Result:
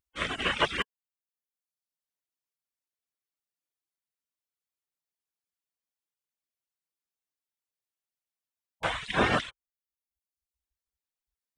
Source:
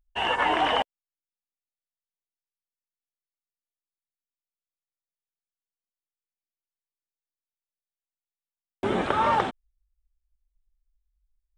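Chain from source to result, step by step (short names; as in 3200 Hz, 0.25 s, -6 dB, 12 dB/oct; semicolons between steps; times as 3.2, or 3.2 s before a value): spectral gate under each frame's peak -15 dB weak; reverb removal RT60 0.91 s; upward expander 1.5:1, over -42 dBFS; gain +9 dB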